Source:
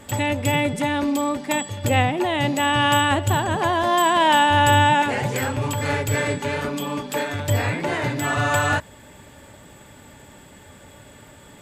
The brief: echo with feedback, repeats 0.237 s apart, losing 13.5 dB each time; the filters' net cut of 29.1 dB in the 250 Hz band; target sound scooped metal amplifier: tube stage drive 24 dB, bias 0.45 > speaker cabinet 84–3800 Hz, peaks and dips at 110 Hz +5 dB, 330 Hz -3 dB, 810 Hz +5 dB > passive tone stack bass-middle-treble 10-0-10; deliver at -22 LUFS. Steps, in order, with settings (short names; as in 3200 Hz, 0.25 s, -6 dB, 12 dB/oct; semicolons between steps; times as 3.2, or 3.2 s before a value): bell 250 Hz -5.5 dB; feedback echo 0.237 s, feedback 21%, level -13.5 dB; tube stage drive 24 dB, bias 0.45; speaker cabinet 84–3800 Hz, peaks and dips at 110 Hz +5 dB, 330 Hz -3 dB, 810 Hz +5 dB; passive tone stack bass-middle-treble 10-0-10; gain +13.5 dB